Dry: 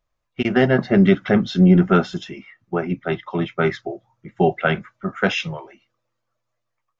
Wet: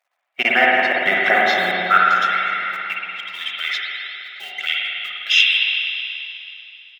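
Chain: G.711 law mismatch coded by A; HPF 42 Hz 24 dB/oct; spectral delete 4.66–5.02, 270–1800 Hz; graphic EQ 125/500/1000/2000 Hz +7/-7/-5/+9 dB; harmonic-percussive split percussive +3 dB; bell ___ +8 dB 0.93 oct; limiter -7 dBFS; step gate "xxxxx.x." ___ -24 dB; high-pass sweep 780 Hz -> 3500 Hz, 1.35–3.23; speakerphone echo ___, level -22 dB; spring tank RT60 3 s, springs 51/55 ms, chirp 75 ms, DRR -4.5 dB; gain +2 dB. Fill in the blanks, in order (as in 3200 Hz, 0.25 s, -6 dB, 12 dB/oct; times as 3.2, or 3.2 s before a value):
600 Hz, 114 bpm, 0.16 s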